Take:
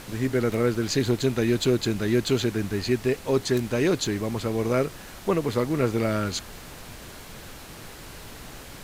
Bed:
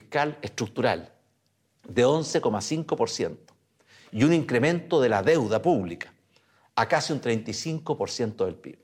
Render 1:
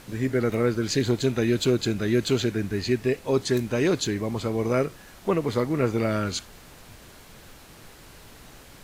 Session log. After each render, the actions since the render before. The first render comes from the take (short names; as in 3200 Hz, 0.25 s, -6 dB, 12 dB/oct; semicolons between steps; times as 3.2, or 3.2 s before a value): noise print and reduce 6 dB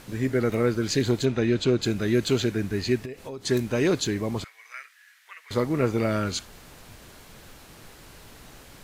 1.25–1.82 air absorption 83 m; 3.05–3.45 compressor 8:1, threshold -33 dBFS; 4.44–5.51 ladder high-pass 1600 Hz, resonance 60%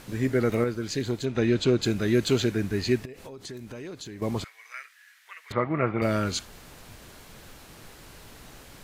0.64–1.35 gain -5.5 dB; 3.05–4.22 compressor 5:1, threshold -38 dBFS; 5.52–6.02 speaker cabinet 110–2500 Hz, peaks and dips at 260 Hz -6 dB, 440 Hz -7 dB, 670 Hz +5 dB, 1200 Hz +6 dB, 2100 Hz +5 dB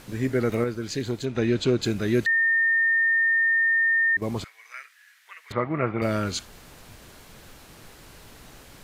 2.26–4.17 bleep 1820 Hz -18 dBFS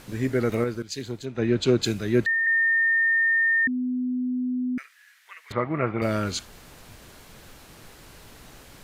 0.82–2.47 three-band expander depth 100%; 3.67–4.78 bleep 251 Hz -23.5 dBFS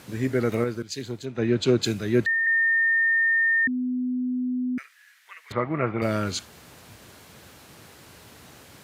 HPF 70 Hz 24 dB/oct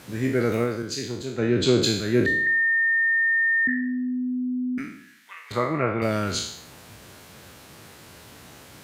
spectral trails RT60 0.67 s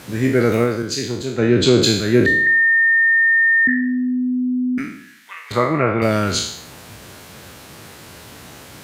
gain +7 dB; limiter -3 dBFS, peak gain reduction 2 dB